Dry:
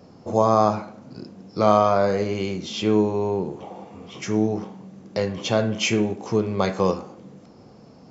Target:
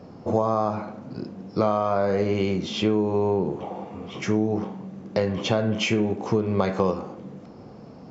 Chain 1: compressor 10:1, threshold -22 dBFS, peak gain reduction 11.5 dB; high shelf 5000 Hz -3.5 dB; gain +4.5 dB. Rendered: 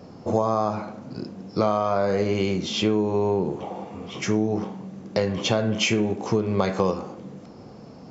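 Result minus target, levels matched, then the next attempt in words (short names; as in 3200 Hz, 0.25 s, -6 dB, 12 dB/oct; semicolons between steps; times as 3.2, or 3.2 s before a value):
8000 Hz band +6.0 dB
compressor 10:1, threshold -22 dBFS, peak gain reduction 11.5 dB; high shelf 5000 Hz -13.5 dB; gain +4.5 dB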